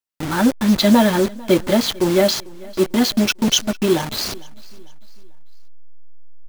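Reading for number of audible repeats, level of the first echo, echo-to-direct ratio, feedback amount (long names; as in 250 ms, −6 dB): 2, −23.0 dB, −22.0 dB, 41%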